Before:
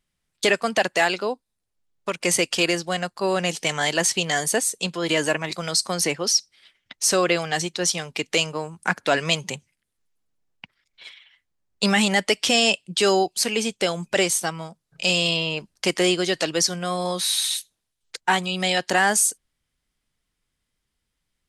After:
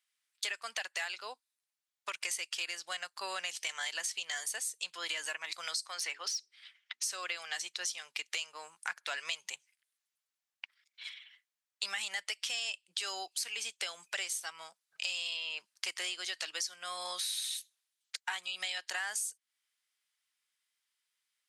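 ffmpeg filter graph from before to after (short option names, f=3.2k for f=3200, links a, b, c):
-filter_complex "[0:a]asettb=1/sr,asplit=3[a][b][c];[a]atrim=end=5.864[d];[b]atrim=start=5.86:end=7.03,asetpts=PTS-STARTPTS,afade=t=in:d=0.004:c=qsin,afade=t=out:st=1.166:d=0.004:c=qsin,bandreject=f=60:t=h:w=6,bandreject=f=120:t=h:w=6,bandreject=f=180:t=h:w=6,bandreject=f=240:t=h:w=6,bandreject=f=300:t=h:w=6,bandreject=f=360:t=h:w=6,bandreject=f=420:t=h:w=6,asplit=2[e][f];[f]highpass=f=720:p=1,volume=8dB,asoftclip=type=tanh:threshold=-7.5dB[g];[e][g]amix=inputs=2:normalize=0,lowpass=f=3.2k:p=1,volume=-6dB[h];[c]atrim=start=7.026[i];[d][h]acrossfade=d=0.004:c1=hsin:c2=qsin[j];[j][i]acrossfade=d=0.004:c1=qsin:c2=hsin,highpass=1.4k,acompressor=threshold=-33dB:ratio=5,volume=-2dB"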